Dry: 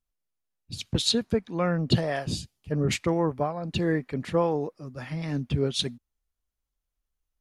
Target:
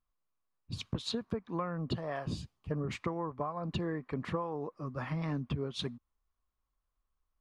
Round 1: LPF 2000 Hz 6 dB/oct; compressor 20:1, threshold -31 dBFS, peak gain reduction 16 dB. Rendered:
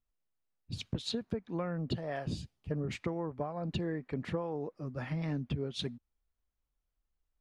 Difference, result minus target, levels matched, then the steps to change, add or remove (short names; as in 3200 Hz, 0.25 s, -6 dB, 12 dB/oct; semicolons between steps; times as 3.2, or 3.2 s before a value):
1000 Hz band -4.0 dB
add after LPF: bell 1100 Hz +12 dB 0.47 oct